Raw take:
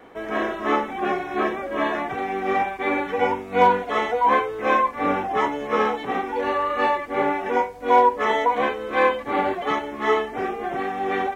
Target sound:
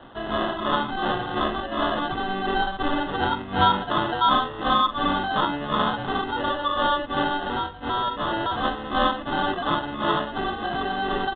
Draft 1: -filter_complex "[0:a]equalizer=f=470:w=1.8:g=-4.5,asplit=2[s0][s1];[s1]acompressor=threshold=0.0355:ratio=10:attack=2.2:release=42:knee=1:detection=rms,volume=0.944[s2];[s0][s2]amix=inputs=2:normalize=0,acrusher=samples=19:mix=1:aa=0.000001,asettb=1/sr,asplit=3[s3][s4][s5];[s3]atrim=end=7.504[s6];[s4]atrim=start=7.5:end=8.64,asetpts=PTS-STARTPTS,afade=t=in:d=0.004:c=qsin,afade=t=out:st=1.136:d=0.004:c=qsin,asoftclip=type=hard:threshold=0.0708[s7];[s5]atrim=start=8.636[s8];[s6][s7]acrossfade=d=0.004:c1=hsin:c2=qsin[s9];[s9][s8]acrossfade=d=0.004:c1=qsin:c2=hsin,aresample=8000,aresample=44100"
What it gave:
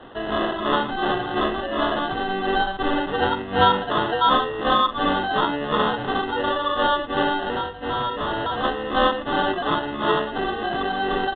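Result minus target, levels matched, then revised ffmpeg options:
500 Hz band +2.5 dB
-filter_complex "[0:a]equalizer=f=470:w=1.8:g=-15.5,asplit=2[s0][s1];[s1]acompressor=threshold=0.0355:ratio=10:attack=2.2:release=42:knee=1:detection=rms,volume=0.944[s2];[s0][s2]amix=inputs=2:normalize=0,acrusher=samples=19:mix=1:aa=0.000001,asettb=1/sr,asplit=3[s3][s4][s5];[s3]atrim=end=7.504[s6];[s4]atrim=start=7.5:end=8.64,asetpts=PTS-STARTPTS,afade=t=in:d=0.004:c=qsin,afade=t=out:st=1.136:d=0.004:c=qsin,asoftclip=type=hard:threshold=0.0708[s7];[s5]atrim=start=8.636[s8];[s6][s7]acrossfade=d=0.004:c1=hsin:c2=qsin[s9];[s9][s8]acrossfade=d=0.004:c1=qsin:c2=hsin,aresample=8000,aresample=44100"

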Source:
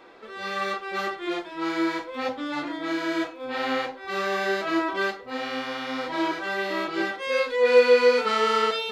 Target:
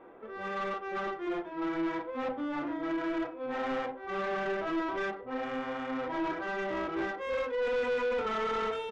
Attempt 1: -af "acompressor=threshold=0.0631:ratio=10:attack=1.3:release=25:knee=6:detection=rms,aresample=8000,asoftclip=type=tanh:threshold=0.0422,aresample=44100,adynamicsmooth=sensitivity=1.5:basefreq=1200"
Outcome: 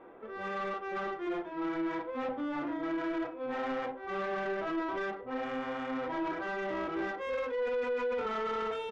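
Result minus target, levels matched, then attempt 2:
compression: peak gain reduction +14 dB
-af "aresample=8000,asoftclip=type=tanh:threshold=0.0422,aresample=44100,adynamicsmooth=sensitivity=1.5:basefreq=1200"

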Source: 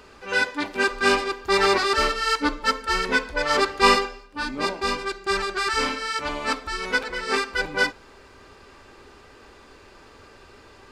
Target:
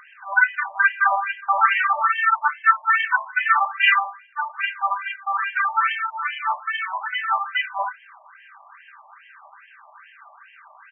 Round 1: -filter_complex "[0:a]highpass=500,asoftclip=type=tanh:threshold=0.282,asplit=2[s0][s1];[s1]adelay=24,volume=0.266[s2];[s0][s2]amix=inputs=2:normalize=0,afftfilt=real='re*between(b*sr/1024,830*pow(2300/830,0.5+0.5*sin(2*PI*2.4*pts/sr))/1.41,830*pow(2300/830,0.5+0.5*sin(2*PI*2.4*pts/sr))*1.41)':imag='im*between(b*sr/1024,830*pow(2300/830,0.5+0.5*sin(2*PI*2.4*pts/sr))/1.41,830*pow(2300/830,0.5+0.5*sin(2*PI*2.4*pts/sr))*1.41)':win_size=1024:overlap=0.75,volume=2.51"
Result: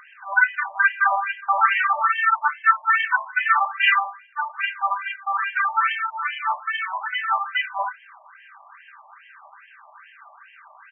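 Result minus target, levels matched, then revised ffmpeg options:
saturation: distortion +9 dB
-filter_complex "[0:a]highpass=500,asoftclip=type=tanh:threshold=0.562,asplit=2[s0][s1];[s1]adelay=24,volume=0.266[s2];[s0][s2]amix=inputs=2:normalize=0,afftfilt=real='re*between(b*sr/1024,830*pow(2300/830,0.5+0.5*sin(2*PI*2.4*pts/sr))/1.41,830*pow(2300/830,0.5+0.5*sin(2*PI*2.4*pts/sr))*1.41)':imag='im*between(b*sr/1024,830*pow(2300/830,0.5+0.5*sin(2*PI*2.4*pts/sr))/1.41,830*pow(2300/830,0.5+0.5*sin(2*PI*2.4*pts/sr))*1.41)':win_size=1024:overlap=0.75,volume=2.51"

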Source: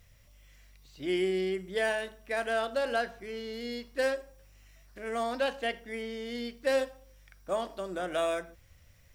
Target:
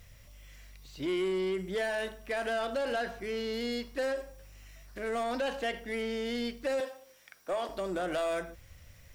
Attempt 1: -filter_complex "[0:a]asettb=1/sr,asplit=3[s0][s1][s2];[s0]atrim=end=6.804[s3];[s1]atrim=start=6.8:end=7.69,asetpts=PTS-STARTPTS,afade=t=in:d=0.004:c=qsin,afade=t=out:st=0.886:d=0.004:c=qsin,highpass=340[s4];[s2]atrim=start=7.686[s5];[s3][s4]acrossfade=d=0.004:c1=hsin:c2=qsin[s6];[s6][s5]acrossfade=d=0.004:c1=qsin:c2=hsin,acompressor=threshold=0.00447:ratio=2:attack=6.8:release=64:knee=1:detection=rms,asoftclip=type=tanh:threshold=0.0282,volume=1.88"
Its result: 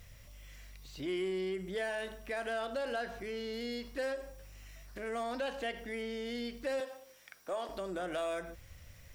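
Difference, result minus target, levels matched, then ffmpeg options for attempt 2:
compression: peak gain reduction +6 dB
-filter_complex "[0:a]asettb=1/sr,asplit=3[s0][s1][s2];[s0]atrim=end=6.804[s3];[s1]atrim=start=6.8:end=7.69,asetpts=PTS-STARTPTS,afade=t=in:d=0.004:c=qsin,afade=t=out:st=0.886:d=0.004:c=qsin,highpass=340[s4];[s2]atrim=start=7.686[s5];[s3][s4]acrossfade=d=0.004:c1=hsin:c2=qsin[s6];[s6][s5]acrossfade=d=0.004:c1=qsin:c2=hsin,acompressor=threshold=0.0178:ratio=2:attack=6.8:release=64:knee=1:detection=rms,asoftclip=type=tanh:threshold=0.0282,volume=1.88"

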